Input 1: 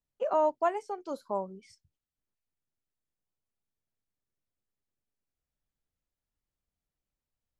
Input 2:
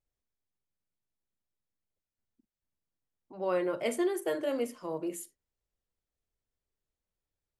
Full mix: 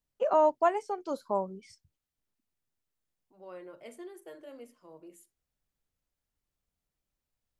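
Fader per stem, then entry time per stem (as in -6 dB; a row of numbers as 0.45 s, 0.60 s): +2.5 dB, -16.0 dB; 0.00 s, 0.00 s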